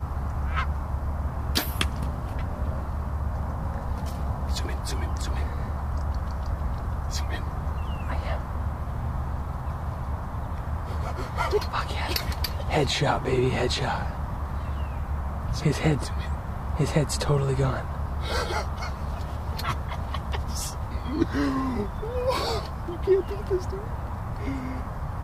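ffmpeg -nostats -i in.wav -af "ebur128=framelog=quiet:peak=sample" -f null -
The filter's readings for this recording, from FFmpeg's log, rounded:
Integrated loudness:
  I:         -28.9 LUFS
  Threshold: -38.9 LUFS
Loudness range:
  LRA:         4.4 LU
  Threshold: -48.8 LUFS
  LRA low:   -31.0 LUFS
  LRA high:  -26.6 LUFS
Sample peak:
  Peak:       -7.2 dBFS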